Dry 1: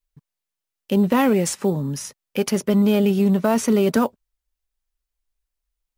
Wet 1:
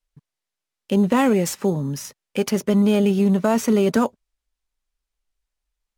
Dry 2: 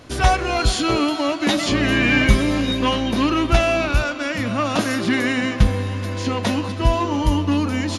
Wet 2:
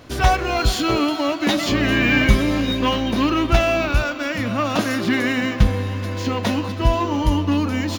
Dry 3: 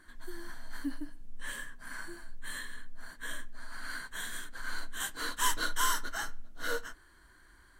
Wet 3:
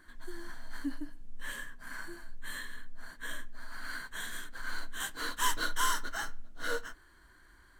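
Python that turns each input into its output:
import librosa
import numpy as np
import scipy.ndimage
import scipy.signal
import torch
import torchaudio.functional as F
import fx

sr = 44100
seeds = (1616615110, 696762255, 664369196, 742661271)

y = np.interp(np.arange(len(x)), np.arange(len(x))[::2], x[::2])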